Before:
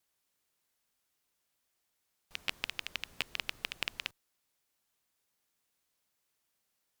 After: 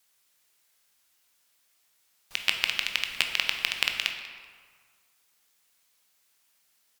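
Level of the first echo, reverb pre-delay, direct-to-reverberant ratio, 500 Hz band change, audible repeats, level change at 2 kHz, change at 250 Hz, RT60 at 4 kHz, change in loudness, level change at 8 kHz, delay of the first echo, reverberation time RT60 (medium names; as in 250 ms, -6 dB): -18.5 dB, 15 ms, 4.0 dB, +5.5 dB, 1, +11.5 dB, +3.5 dB, 1.0 s, +11.5 dB, +12.0 dB, 191 ms, 1.7 s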